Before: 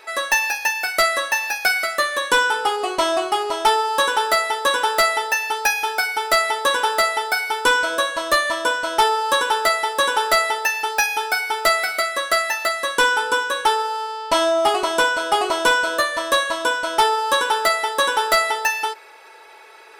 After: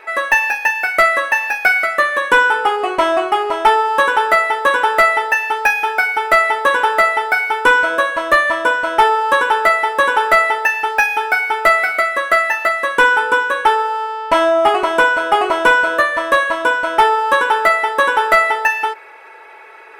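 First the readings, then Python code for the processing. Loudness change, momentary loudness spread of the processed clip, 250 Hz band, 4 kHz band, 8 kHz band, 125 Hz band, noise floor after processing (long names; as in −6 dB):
+5.0 dB, 4 LU, +4.5 dB, −3.5 dB, −7.5 dB, can't be measured, −39 dBFS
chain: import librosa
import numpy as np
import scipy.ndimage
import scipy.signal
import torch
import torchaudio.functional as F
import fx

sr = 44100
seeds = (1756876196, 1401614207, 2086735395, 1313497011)

y = fx.high_shelf_res(x, sr, hz=3100.0, db=-10.5, q=1.5)
y = y * 10.0 ** (4.5 / 20.0)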